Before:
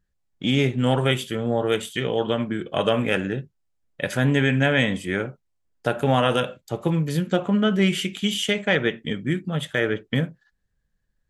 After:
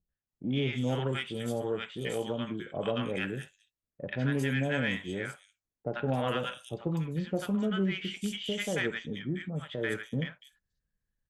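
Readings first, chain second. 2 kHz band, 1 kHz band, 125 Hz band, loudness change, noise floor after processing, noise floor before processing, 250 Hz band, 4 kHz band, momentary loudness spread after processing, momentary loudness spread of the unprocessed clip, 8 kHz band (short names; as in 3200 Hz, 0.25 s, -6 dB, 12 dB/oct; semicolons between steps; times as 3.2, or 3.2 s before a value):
-9.5 dB, -11.5 dB, -9.0 dB, -9.5 dB, under -85 dBFS, -73 dBFS, -9.0 dB, -11.0 dB, 8 LU, 9 LU, -9.5 dB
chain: three bands offset in time lows, mids, highs 90/290 ms, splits 850/4200 Hz; added harmonics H 6 -37 dB, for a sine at -7 dBFS; gain -9 dB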